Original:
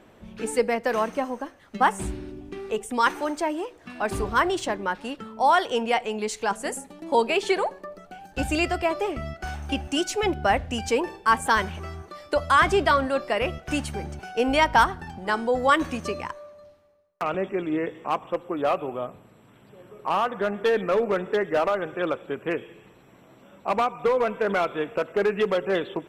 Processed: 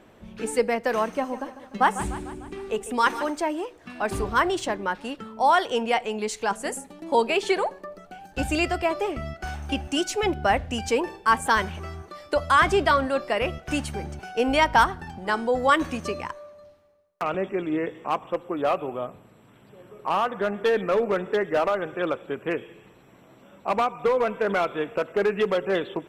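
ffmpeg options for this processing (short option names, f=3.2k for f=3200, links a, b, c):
-filter_complex "[0:a]asettb=1/sr,asplit=3[a][b][c];[a]atrim=end=1.074[d];[b]atrim=start=1.07:end=3.3,asetpts=PTS-STARTPTS,afade=t=in:d=0.004:c=qsin,afade=t=out:st=2.226:d=0.004:c=qsin,aecho=1:1:149|298|447|596|745|894:0.224|0.125|0.0702|0.0393|0.022|0.0123,atrim=end_sample=98343[e];[c]atrim=start=3.296[f];[d][e]acrossfade=d=0.004:c1=hsin:c2=qsin[g];[g][f]acrossfade=d=0.004:c1=qsin:c2=hsin"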